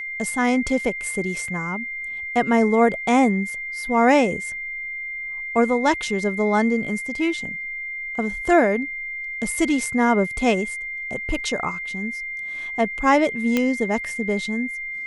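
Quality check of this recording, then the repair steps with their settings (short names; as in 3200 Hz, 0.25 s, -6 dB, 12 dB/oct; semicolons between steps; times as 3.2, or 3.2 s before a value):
tone 2100 Hz -28 dBFS
1.48 gap 2.9 ms
13.57 pop -7 dBFS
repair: de-click; notch 2100 Hz, Q 30; interpolate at 1.48, 2.9 ms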